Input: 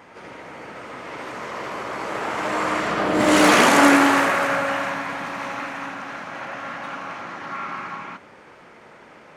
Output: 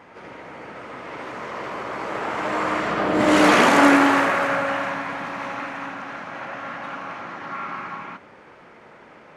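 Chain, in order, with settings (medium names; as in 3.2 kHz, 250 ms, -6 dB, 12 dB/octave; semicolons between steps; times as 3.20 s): treble shelf 5.4 kHz -9.5 dB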